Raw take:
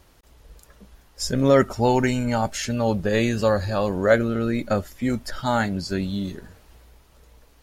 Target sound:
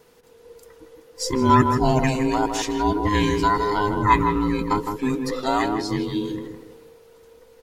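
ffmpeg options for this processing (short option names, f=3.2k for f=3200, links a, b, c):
-filter_complex "[0:a]afftfilt=real='real(if(between(b,1,1008),(2*floor((b-1)/24)+1)*24-b,b),0)':imag='imag(if(between(b,1,1008),(2*floor((b-1)/24)+1)*24-b,b),0)*if(between(b,1,1008),-1,1)':win_size=2048:overlap=0.75,adynamicequalizer=threshold=0.00355:dfrequency=3800:dqfactor=4.6:tfrequency=3800:tqfactor=4.6:attack=5:release=100:ratio=0.375:range=1.5:mode=boostabove:tftype=bell,asplit=2[a][b];[b]adelay=160,lowpass=f=1.5k:p=1,volume=-5dB,asplit=2[c][d];[d]adelay=160,lowpass=f=1.5k:p=1,volume=0.34,asplit=2[e][f];[f]adelay=160,lowpass=f=1.5k:p=1,volume=0.34,asplit=2[g][h];[h]adelay=160,lowpass=f=1.5k:p=1,volume=0.34[i];[c][e][g][i]amix=inputs=4:normalize=0[j];[a][j]amix=inputs=2:normalize=0"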